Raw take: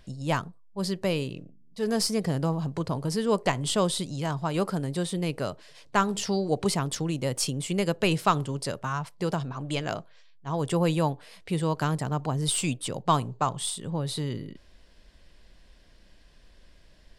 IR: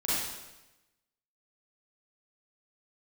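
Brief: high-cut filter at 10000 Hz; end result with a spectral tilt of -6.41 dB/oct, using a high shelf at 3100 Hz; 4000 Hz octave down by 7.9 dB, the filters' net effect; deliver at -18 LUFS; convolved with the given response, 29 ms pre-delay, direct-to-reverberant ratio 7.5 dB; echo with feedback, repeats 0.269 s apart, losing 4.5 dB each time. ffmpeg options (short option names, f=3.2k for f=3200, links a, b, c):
-filter_complex "[0:a]lowpass=10k,highshelf=f=3.1k:g=-5,equalizer=f=4k:t=o:g=-6.5,aecho=1:1:269|538|807|1076|1345|1614|1883|2152|2421:0.596|0.357|0.214|0.129|0.0772|0.0463|0.0278|0.0167|0.01,asplit=2[a][b];[1:a]atrim=start_sample=2205,adelay=29[c];[b][c]afir=irnorm=-1:irlink=0,volume=-16.5dB[d];[a][d]amix=inputs=2:normalize=0,volume=9dB"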